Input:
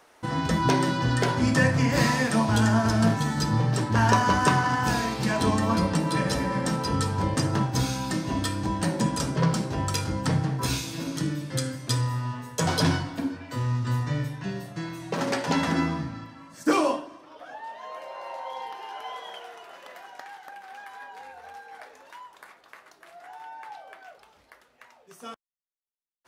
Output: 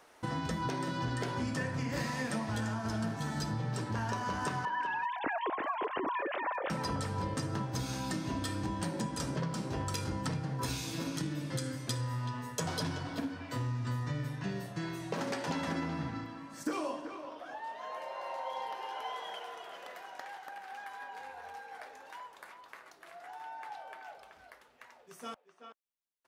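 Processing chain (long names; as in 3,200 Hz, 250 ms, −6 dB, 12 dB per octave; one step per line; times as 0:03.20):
0:04.65–0:06.70: three sine waves on the formant tracks
downward compressor 8 to 1, threshold −29 dBFS, peak gain reduction 14 dB
far-end echo of a speakerphone 380 ms, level −8 dB
level −3 dB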